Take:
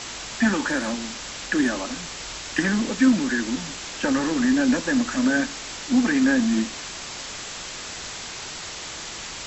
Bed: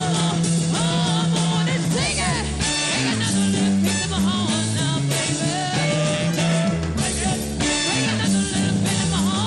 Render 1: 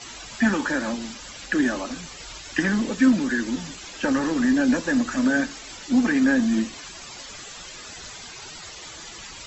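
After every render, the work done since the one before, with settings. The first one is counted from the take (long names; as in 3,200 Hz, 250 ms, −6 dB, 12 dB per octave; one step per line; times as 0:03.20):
broadband denoise 13 dB, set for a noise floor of −36 dBFS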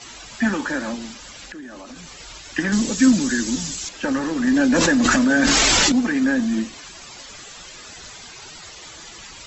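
0:01.50–0:02.17: downward compressor 8 to 1, threshold −34 dBFS
0:02.72–0:03.89: bass and treble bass +6 dB, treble +15 dB
0:04.47–0:05.92: envelope flattener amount 100%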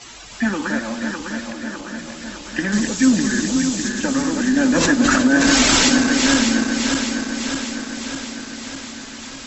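feedback delay that plays each chunk backwards 302 ms, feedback 78%, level −5 dB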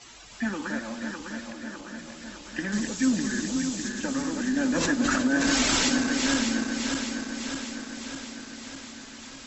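level −9 dB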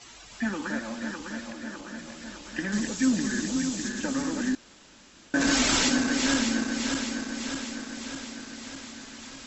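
0:04.55–0:05.34: fill with room tone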